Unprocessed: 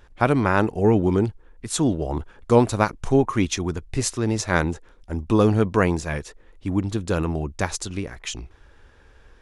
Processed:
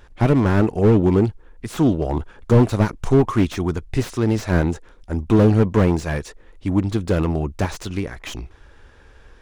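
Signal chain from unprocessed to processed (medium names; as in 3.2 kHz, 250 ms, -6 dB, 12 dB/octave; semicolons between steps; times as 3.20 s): self-modulated delay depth 0.23 ms; slew-rate limiter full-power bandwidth 69 Hz; trim +4 dB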